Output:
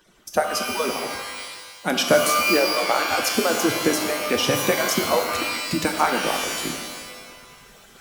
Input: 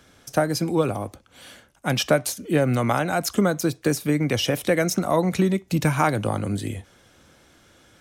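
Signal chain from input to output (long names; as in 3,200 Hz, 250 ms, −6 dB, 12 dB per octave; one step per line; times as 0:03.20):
harmonic-percussive split with one part muted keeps percussive
reversed playback
upward compression, threshold −44 dBFS
reversed playback
reverb with rising layers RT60 1.2 s, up +12 semitones, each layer −2 dB, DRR 4 dB
level +1.5 dB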